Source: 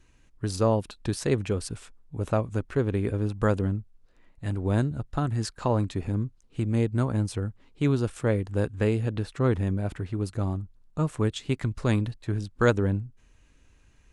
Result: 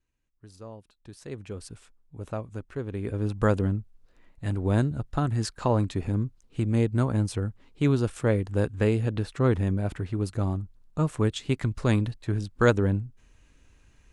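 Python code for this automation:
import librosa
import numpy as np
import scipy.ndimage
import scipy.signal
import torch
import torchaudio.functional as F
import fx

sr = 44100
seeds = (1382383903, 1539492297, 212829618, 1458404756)

y = fx.gain(x, sr, db=fx.line((0.94, -20.0), (1.63, -8.0), (2.87, -8.0), (3.31, 1.0)))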